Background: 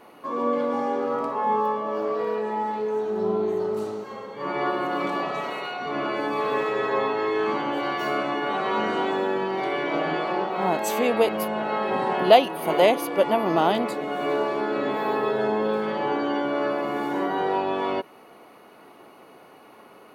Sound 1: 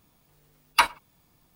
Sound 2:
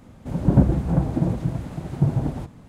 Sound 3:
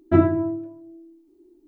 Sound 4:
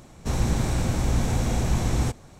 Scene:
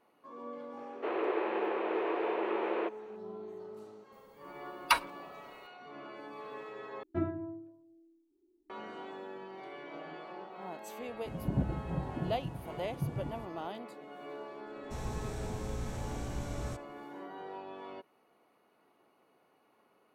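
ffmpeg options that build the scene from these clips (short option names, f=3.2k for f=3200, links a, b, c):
-filter_complex "[4:a]asplit=2[a][b];[0:a]volume=-20dB[c];[a]highpass=f=150:t=q:w=0.5412,highpass=f=150:t=q:w=1.307,lowpass=f=2.7k:t=q:w=0.5176,lowpass=f=2.7k:t=q:w=0.7071,lowpass=f=2.7k:t=q:w=1.932,afreqshift=210[d];[b]agate=range=-33dB:threshold=-43dB:ratio=3:release=100:detection=peak[e];[c]asplit=2[f][g];[f]atrim=end=7.034[h];[3:a]atrim=end=1.67,asetpts=PTS-STARTPTS,volume=-17dB[i];[g]atrim=start=8.696[j];[d]atrim=end=2.39,asetpts=PTS-STARTPTS,volume=-3.5dB,afade=t=in:d=0.004:c=hsin,afade=t=out:st=2.386:d=0.004:c=hsin,adelay=770[k];[1:a]atrim=end=1.55,asetpts=PTS-STARTPTS,volume=-6.5dB,afade=t=in:d=0.004:c=hsin,afade=t=out:st=1.546:d=0.004:c=hsin,adelay=4120[l];[2:a]atrim=end=2.68,asetpts=PTS-STARTPTS,volume=-15.5dB,afade=t=in:d=0.004:c=hsin,afade=t=out:st=2.676:d=0.004:c=hsin,adelay=11000[m];[e]atrim=end=2.39,asetpts=PTS-STARTPTS,volume=-15.5dB,afade=t=in:d=0.004:c=hsin,afade=t=out:st=2.386:d=0.004:c=hsin,adelay=14650[n];[h][i]acrossfade=d=0.004:c1=hsin:c2=hsin[o];[o][j]acrossfade=d=0.004:c1=hsin:c2=hsin[p];[p][k][l][m][n]amix=inputs=5:normalize=0"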